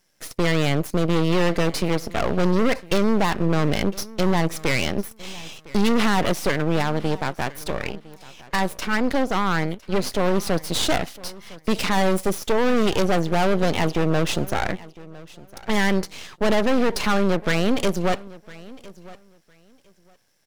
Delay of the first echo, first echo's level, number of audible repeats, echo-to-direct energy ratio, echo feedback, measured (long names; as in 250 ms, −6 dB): 1,007 ms, −20.5 dB, 2, −20.5 dB, 19%